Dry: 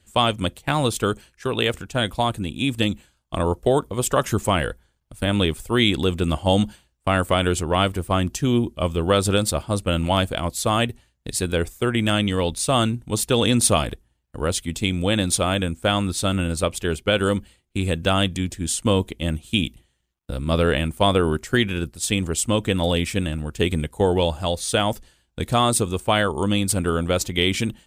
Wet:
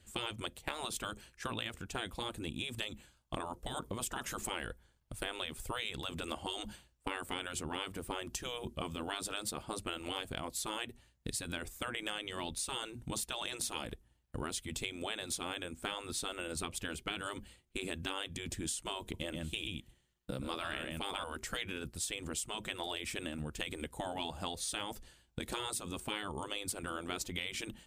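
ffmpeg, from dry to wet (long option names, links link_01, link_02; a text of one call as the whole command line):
ffmpeg -i in.wav -filter_complex "[0:a]asettb=1/sr,asplit=3[link_01][link_02][link_03];[link_01]atrim=end=19.014[link_04];[link_02]atrim=start=19.01:end=21.24,asetpts=PTS-STARTPTS,afade=type=in:duration=0.004:curve=qsin,afade=type=out:start_time=2.226:duration=0.004:curve=qsin,aecho=1:1:125:0.473,atrim=end_sample=98343[link_05];[link_03]atrim=start=21.236[link_06];[link_04][link_05]acrossfade=duration=0.004:curve1=hsin:curve2=qsin[link_07];[link_07][link_06]acrossfade=duration=0.004:curve1=qsin:curve2=hsin,afftfilt=real='re*lt(hypot(re,im),0.316)':imag='im*lt(hypot(re,im),0.316)':win_size=1024:overlap=0.75,acompressor=threshold=-33dB:ratio=6,volume=-3dB" out.wav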